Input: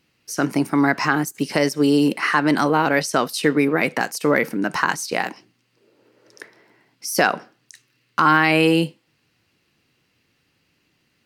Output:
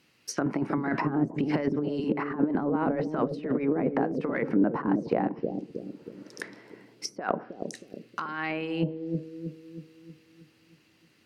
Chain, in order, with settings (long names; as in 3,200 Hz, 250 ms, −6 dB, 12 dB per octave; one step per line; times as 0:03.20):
high-pass filter 150 Hz 6 dB per octave
compressor whose output falls as the input rises −22 dBFS, ratio −0.5
treble cut that deepens with the level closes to 620 Hz, closed at −19 dBFS
on a send: bucket-brigade delay 316 ms, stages 1,024, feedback 52%, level −3 dB
on the sum: level −2.5 dB